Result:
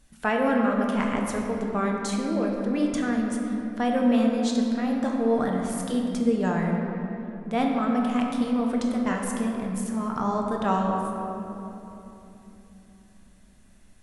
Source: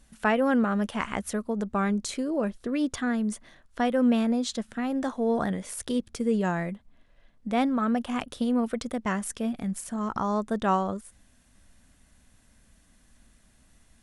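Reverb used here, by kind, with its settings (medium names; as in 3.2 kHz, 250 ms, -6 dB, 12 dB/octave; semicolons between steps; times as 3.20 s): simulated room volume 180 m³, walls hard, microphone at 0.46 m; trim -1.5 dB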